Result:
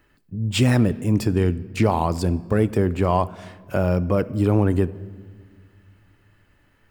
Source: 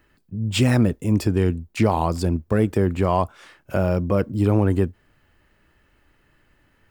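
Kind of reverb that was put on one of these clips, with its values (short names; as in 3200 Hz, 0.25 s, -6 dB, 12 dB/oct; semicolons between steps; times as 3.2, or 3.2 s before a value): shoebox room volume 2600 m³, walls mixed, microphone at 0.31 m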